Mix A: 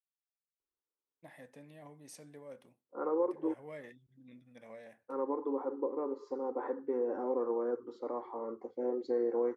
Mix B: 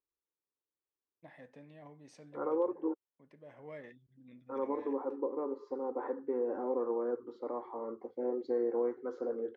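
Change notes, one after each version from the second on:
second voice: entry -0.60 s; master: add distance through air 130 m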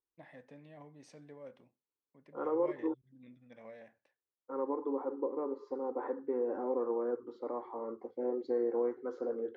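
first voice: entry -1.05 s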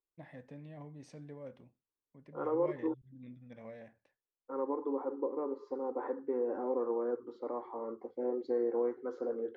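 first voice: remove high-pass 390 Hz 6 dB/octave

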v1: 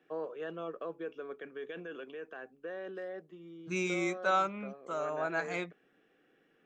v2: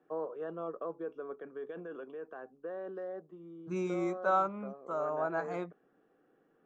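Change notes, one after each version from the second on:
master: add resonant high shelf 1.6 kHz -11.5 dB, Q 1.5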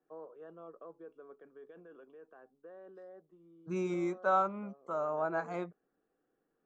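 first voice -11.0 dB

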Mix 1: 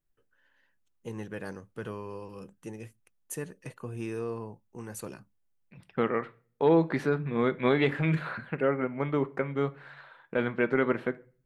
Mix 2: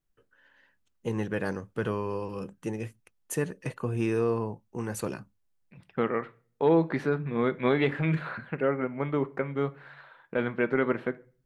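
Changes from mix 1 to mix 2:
first voice +8.0 dB; master: add treble shelf 6.3 kHz -7.5 dB

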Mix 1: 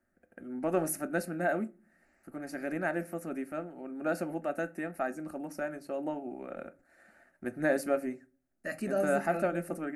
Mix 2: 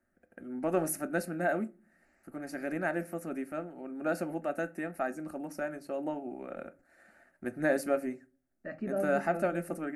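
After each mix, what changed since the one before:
second voice: add tape spacing loss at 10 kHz 43 dB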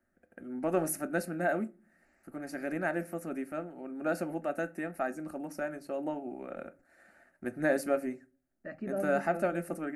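second voice: send -9.5 dB

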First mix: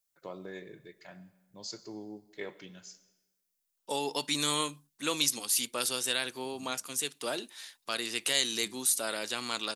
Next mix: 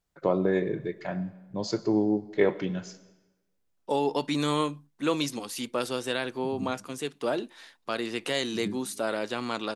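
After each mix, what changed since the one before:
second voice -10.5 dB; master: remove pre-emphasis filter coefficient 0.9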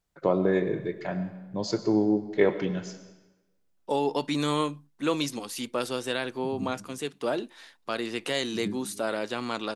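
first voice: send +7.0 dB

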